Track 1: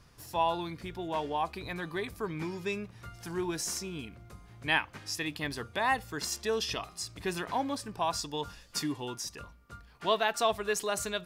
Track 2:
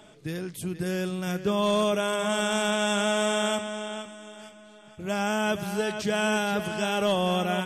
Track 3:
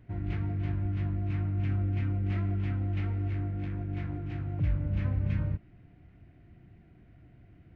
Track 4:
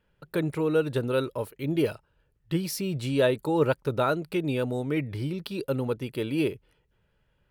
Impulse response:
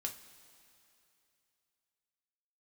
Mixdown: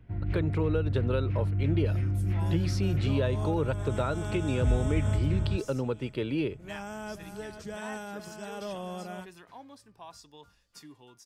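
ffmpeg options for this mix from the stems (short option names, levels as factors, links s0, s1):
-filter_complex "[0:a]adelay=2000,volume=0.15[s0];[1:a]equalizer=f=3000:w=1.4:g=-7.5,adelay=1600,volume=0.237[s1];[2:a]lowshelf=f=110:g=8.5,volume=0.708[s2];[3:a]lowpass=4800,volume=0.944[s3];[s0][s1][s2][s3]amix=inputs=4:normalize=0,acrossover=split=140[s4][s5];[s5]acompressor=threshold=0.0501:ratio=10[s6];[s4][s6]amix=inputs=2:normalize=0"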